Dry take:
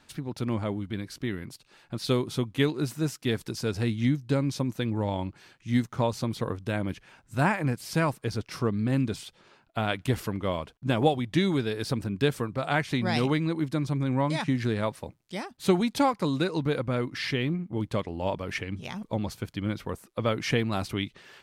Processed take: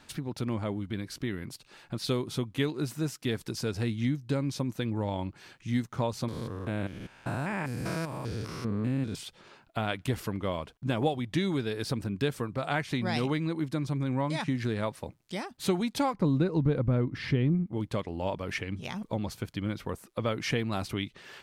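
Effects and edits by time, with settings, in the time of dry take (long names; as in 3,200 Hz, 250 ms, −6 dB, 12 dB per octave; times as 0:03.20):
0:06.28–0:09.15: spectrum averaged block by block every 200 ms
0:16.14–0:17.66: spectral tilt −3.5 dB per octave
whole clip: downward compressor 1.5 to 1, threshold −42 dBFS; level +3.5 dB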